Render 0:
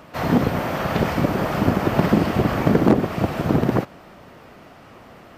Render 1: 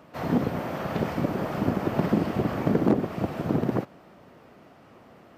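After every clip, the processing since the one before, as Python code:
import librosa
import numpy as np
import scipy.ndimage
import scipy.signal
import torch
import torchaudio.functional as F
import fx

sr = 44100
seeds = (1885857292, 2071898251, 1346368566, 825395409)

y = fx.highpass(x, sr, hz=150.0, slope=6)
y = fx.tilt_shelf(y, sr, db=3.5, hz=700.0)
y = F.gain(torch.from_numpy(y), -7.0).numpy()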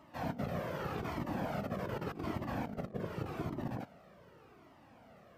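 y = fx.over_compress(x, sr, threshold_db=-27.0, ratio=-0.5)
y = fx.comb_cascade(y, sr, direction='falling', hz=0.85)
y = F.gain(torch.from_numpy(y), -5.0).numpy()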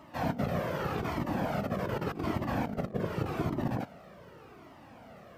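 y = fx.rider(x, sr, range_db=10, speed_s=2.0)
y = F.gain(torch.from_numpy(y), 6.0).numpy()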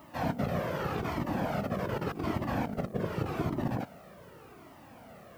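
y = fx.dmg_noise_colour(x, sr, seeds[0], colour='blue', level_db=-68.0)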